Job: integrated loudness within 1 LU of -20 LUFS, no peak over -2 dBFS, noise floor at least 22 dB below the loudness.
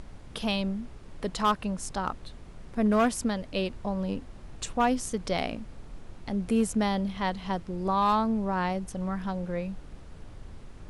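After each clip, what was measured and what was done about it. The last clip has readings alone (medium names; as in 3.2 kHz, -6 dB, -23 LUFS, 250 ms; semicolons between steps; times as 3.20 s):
clipped samples 0.3%; clipping level -17.0 dBFS; noise floor -47 dBFS; noise floor target -52 dBFS; loudness -29.5 LUFS; peak level -17.0 dBFS; loudness target -20.0 LUFS
-> clip repair -17 dBFS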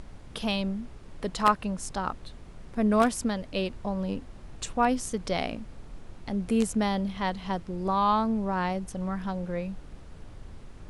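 clipped samples 0.0%; noise floor -47 dBFS; noise floor target -51 dBFS
-> noise print and reduce 6 dB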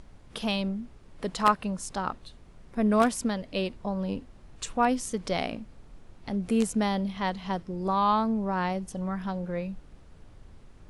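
noise floor -52 dBFS; loudness -29.0 LUFS; peak level -8.0 dBFS; loudness target -20.0 LUFS
-> trim +9 dB; peak limiter -2 dBFS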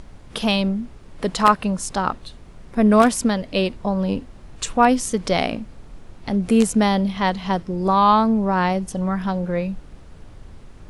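loudness -20.5 LUFS; peak level -2.0 dBFS; noise floor -43 dBFS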